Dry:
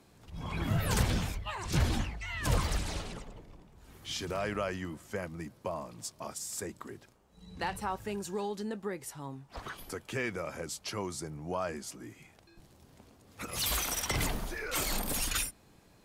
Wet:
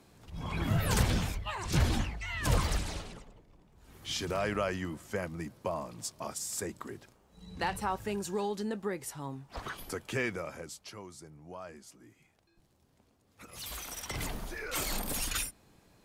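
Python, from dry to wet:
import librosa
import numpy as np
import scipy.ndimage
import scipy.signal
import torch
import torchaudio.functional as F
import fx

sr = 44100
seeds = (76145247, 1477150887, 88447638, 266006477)

y = fx.gain(x, sr, db=fx.line((2.73, 1.0), (3.45, -9.0), (4.1, 2.0), (10.22, 2.0), (11.02, -10.5), (13.7, -10.5), (14.59, -1.5)))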